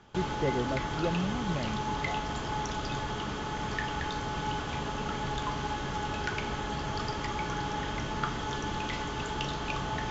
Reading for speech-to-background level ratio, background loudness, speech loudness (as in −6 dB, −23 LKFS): −1.5 dB, −33.5 LKFS, −35.0 LKFS